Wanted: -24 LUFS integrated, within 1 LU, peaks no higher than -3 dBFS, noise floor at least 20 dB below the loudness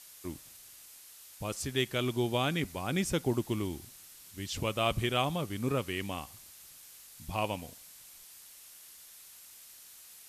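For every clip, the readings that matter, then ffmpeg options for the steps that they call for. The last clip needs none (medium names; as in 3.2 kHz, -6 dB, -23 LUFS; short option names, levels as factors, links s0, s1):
noise floor -53 dBFS; noise floor target -54 dBFS; loudness -33.5 LUFS; peak level -15.0 dBFS; loudness target -24.0 LUFS
-> -af "afftdn=nr=6:nf=-53"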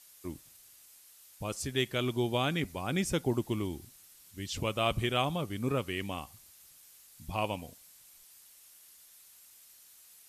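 noise floor -58 dBFS; loudness -33.5 LUFS; peak level -15.0 dBFS; loudness target -24.0 LUFS
-> -af "volume=2.99"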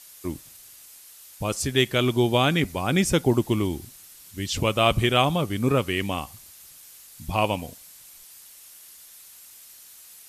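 loudness -24.0 LUFS; peak level -5.5 dBFS; noise floor -48 dBFS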